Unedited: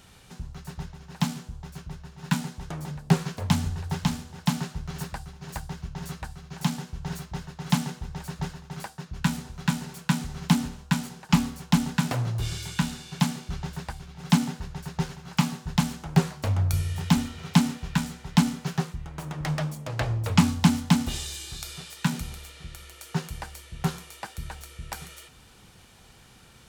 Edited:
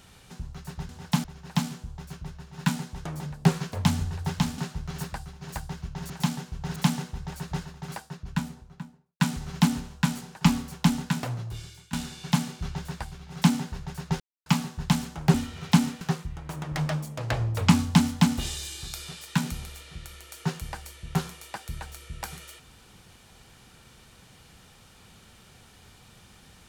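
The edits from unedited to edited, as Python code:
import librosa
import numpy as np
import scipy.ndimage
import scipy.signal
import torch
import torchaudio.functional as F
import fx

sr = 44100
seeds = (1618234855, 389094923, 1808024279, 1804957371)

y = fx.studio_fade_out(x, sr, start_s=8.76, length_s=1.32)
y = fx.edit(y, sr, fx.move(start_s=4.23, length_s=0.35, to_s=0.89),
    fx.cut(start_s=6.1, length_s=0.41),
    fx.cut(start_s=7.17, length_s=0.47),
    fx.fade_out_to(start_s=11.67, length_s=1.14, floor_db=-21.5),
    fx.silence(start_s=15.08, length_s=0.26),
    fx.cut(start_s=16.22, length_s=0.94),
    fx.cut(start_s=17.83, length_s=0.87), tone=tone)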